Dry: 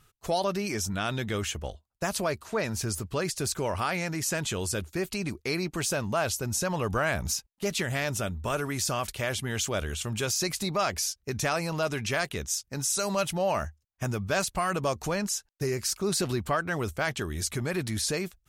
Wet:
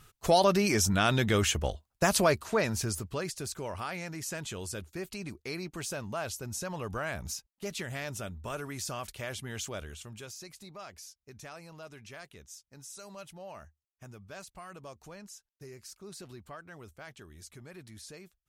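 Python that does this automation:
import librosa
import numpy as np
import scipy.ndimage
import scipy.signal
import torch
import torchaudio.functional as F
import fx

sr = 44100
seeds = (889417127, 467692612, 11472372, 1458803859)

y = fx.gain(x, sr, db=fx.line((2.29, 4.5), (3.48, -8.0), (9.66, -8.0), (10.47, -18.5)))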